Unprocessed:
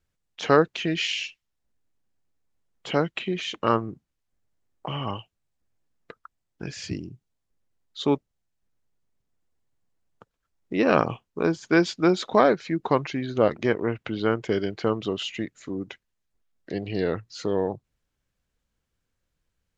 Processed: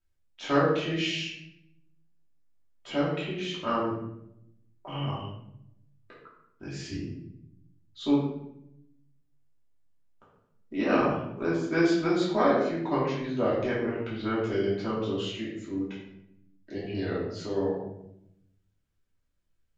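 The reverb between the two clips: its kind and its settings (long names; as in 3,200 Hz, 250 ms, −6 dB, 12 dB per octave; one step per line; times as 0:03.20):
rectangular room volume 220 cubic metres, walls mixed, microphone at 2.8 metres
level −13 dB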